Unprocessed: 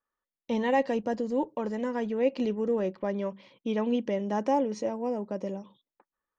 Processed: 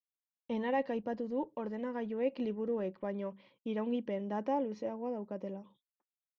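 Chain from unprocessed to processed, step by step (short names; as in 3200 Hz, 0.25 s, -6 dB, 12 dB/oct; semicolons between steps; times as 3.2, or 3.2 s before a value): air absorption 290 m; expander -53 dBFS; high shelf 4300 Hz +9.5 dB; gain -6.5 dB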